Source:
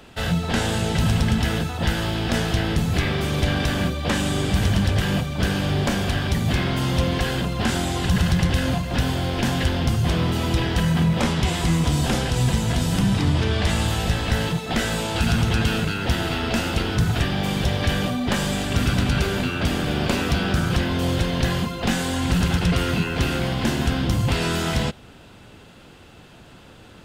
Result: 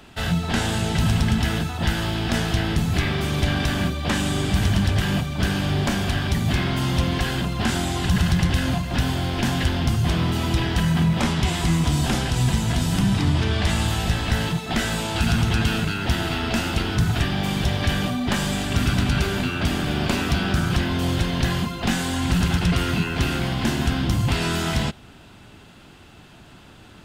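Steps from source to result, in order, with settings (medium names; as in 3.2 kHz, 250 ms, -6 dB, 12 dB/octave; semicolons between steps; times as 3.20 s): peaking EQ 500 Hz -8 dB 0.31 oct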